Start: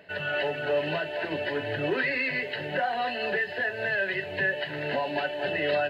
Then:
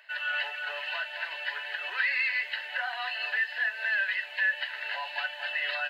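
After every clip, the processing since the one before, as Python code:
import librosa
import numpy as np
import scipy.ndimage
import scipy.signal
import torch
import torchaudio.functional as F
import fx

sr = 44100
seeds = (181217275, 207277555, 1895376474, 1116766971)

y = scipy.signal.sosfilt(scipy.signal.butter(4, 1000.0, 'highpass', fs=sr, output='sos'), x)
y = y * librosa.db_to_amplitude(1.0)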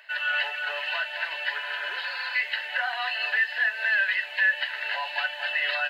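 y = fx.spec_repair(x, sr, seeds[0], start_s=1.64, length_s=0.69, low_hz=710.0, high_hz=2800.0, source='before')
y = y * librosa.db_to_amplitude(4.5)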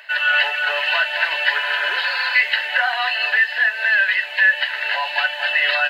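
y = fx.rider(x, sr, range_db=10, speed_s=2.0)
y = y * librosa.db_to_amplitude(8.5)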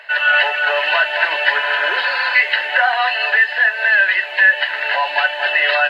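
y = fx.tilt_eq(x, sr, slope=-3.0)
y = y * librosa.db_to_amplitude(5.5)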